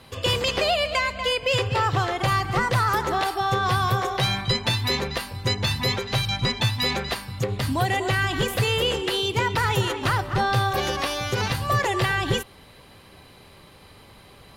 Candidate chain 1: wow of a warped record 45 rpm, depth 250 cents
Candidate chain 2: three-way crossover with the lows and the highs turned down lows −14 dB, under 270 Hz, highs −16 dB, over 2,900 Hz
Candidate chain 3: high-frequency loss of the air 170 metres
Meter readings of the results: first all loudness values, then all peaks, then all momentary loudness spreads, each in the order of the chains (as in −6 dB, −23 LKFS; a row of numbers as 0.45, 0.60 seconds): −23.5, −26.5, −25.0 LKFS; −12.5, −12.0, −13.0 dBFS; 4, 7, 5 LU